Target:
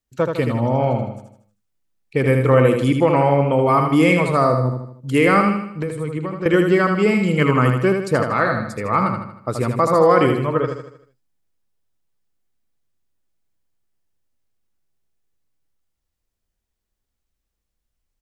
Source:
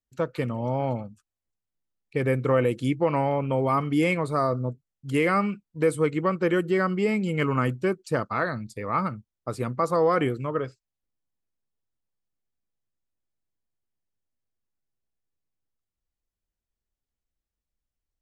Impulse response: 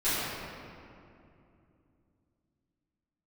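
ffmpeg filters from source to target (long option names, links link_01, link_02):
-filter_complex "[0:a]asettb=1/sr,asplit=3[link_01][link_02][link_03];[link_01]atrim=end=5.644[link_04];[link_02]atrim=start=5.64:end=6.46,asetpts=PTS-STARTPTS,afade=type=in:duration=0.004:curve=qsin,afade=type=out:start_time=0.816:duration=0.004:curve=qsin,acrossover=split=130[link_05][link_06];[link_06]acompressor=threshold=-32dB:ratio=10[link_07];[link_05][link_07]amix=inputs=2:normalize=0[link_08];[link_03]atrim=start=6.456[link_09];[link_04][link_08]acrossfade=duration=0.004:curve1=hsin:curve2=qsin[link_10];[link_10][link_09]acrossfade=duration=0.004:curve1=qsin:curve2=hsin,aecho=1:1:78|156|234|312|390|468:0.531|0.25|0.117|0.0551|0.0259|0.0122,volume=7dB"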